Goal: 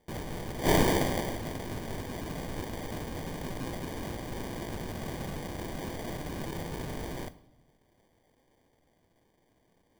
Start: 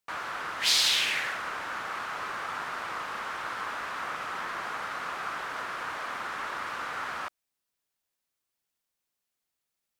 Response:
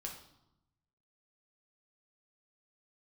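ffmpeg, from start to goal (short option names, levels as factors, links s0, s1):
-filter_complex "[0:a]aexciter=amount=7.3:drive=5.3:freq=8600,acrusher=samples=33:mix=1:aa=0.000001,asplit=2[s0][s1];[1:a]atrim=start_sample=2205,highshelf=f=10000:g=11[s2];[s1][s2]afir=irnorm=-1:irlink=0,volume=0.501[s3];[s0][s3]amix=inputs=2:normalize=0,volume=0.596"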